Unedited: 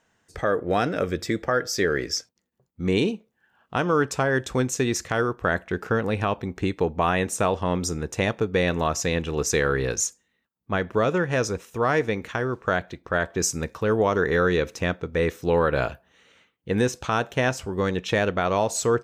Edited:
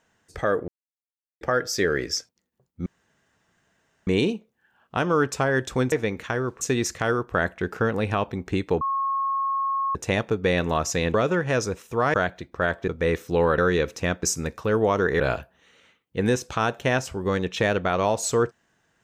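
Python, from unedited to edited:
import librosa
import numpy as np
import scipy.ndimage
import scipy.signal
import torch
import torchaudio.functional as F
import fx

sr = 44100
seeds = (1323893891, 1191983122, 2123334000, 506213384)

y = fx.edit(x, sr, fx.silence(start_s=0.68, length_s=0.73),
    fx.insert_room_tone(at_s=2.86, length_s=1.21),
    fx.bleep(start_s=6.91, length_s=1.14, hz=1090.0, db=-22.0),
    fx.cut(start_s=9.24, length_s=1.73),
    fx.move(start_s=11.97, length_s=0.69, to_s=4.71),
    fx.swap(start_s=13.4, length_s=0.97, other_s=15.02, other_length_s=0.7), tone=tone)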